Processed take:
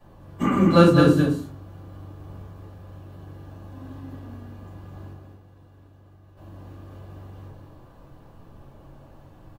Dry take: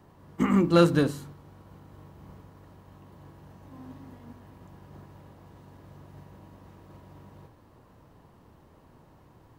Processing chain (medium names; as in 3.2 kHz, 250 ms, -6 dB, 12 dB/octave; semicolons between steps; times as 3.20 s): 5.12–6.37 s: level held to a coarse grid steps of 20 dB; on a send: delay 211 ms -5 dB; on the sum: simulated room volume 150 m³, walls furnished, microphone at 5.7 m; trim -7.5 dB